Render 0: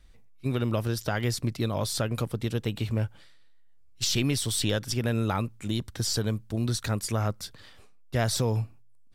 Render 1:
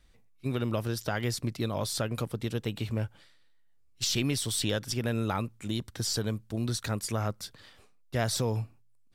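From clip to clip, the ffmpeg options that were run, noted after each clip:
-af "lowshelf=f=71:g=-7,volume=0.794"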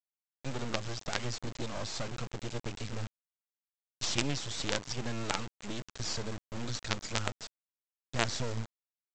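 -af "highpass=61,aresample=16000,acrusher=bits=4:dc=4:mix=0:aa=0.000001,aresample=44100"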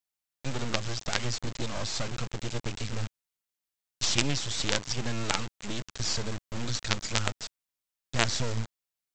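-af "equalizer=f=490:w=0.32:g=-4,volume=2.11"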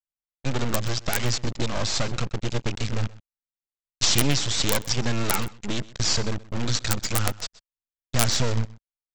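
-af "aeval=exprs='(mod(2.99*val(0)+1,2)-1)/2.99':c=same,anlmdn=1.58,aecho=1:1:127:0.0944,volume=2.24"

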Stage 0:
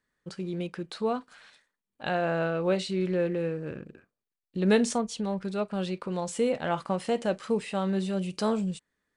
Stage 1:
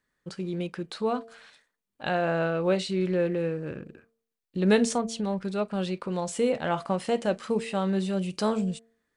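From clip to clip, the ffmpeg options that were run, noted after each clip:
-af "bandreject=f=227.5:t=h:w=4,bandreject=f=455:t=h:w=4,bandreject=f=682.5:t=h:w=4,volume=1.19"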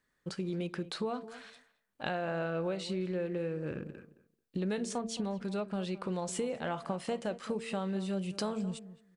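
-filter_complex "[0:a]acompressor=threshold=0.0251:ratio=6,asplit=2[s0][s1];[s1]adelay=218,lowpass=f=1400:p=1,volume=0.188,asplit=2[s2][s3];[s3]adelay=218,lowpass=f=1400:p=1,volume=0.16[s4];[s0][s2][s4]amix=inputs=3:normalize=0"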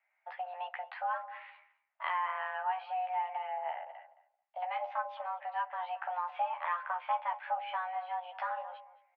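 -filter_complex "[0:a]asplit=2[s0][s1];[s1]adelay=13,volume=0.708[s2];[s0][s2]amix=inputs=2:normalize=0,highpass=f=300:t=q:w=0.5412,highpass=f=300:t=q:w=1.307,lowpass=f=2400:t=q:w=0.5176,lowpass=f=2400:t=q:w=0.7071,lowpass=f=2400:t=q:w=1.932,afreqshift=360"

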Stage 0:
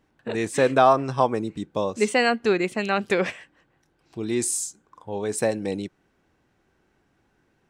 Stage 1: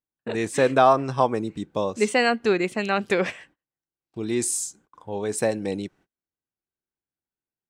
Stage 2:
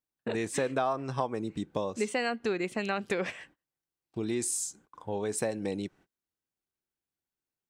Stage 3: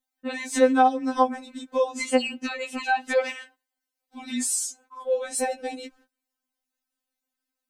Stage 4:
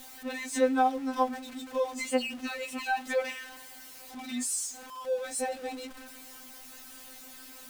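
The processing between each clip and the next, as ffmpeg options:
-af "agate=range=0.0251:threshold=0.00251:ratio=16:detection=peak"
-af "acompressor=threshold=0.0316:ratio=3"
-af "afftfilt=real='re*3.46*eq(mod(b,12),0)':imag='im*3.46*eq(mod(b,12),0)':win_size=2048:overlap=0.75,volume=2.66"
-af "aeval=exprs='val(0)+0.5*0.02*sgn(val(0))':c=same,volume=0.447"

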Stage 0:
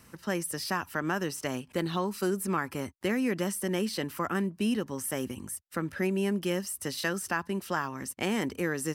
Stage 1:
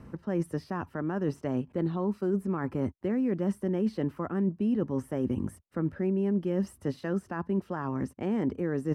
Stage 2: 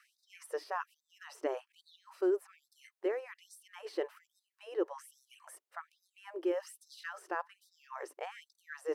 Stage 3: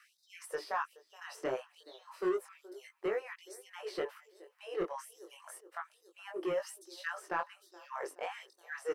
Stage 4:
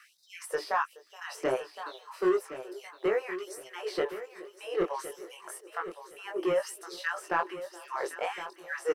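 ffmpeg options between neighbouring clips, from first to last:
-af "lowpass=f=3100:p=1,areverse,acompressor=threshold=0.0158:ratio=6,areverse,tiltshelf=f=1300:g=10,volume=1.26"
-af "afftfilt=real='re*gte(b*sr/1024,300*pow(3600/300,0.5+0.5*sin(2*PI*1.2*pts/sr)))':imag='im*gte(b*sr/1024,300*pow(3600/300,0.5+0.5*sin(2*PI*1.2*pts/sr)))':win_size=1024:overlap=0.75,volume=1.12"
-filter_complex "[0:a]aecho=1:1:423|846|1269:0.0631|0.0334|0.0177,acrossover=split=1100[s0][s1];[s0]asoftclip=type=tanh:threshold=0.0211[s2];[s2][s1]amix=inputs=2:normalize=0,flanger=delay=18:depth=5.3:speed=0.29,volume=2.11"
-af "aecho=1:1:1065|2130|3195:0.237|0.064|0.0173,volume=2.11"

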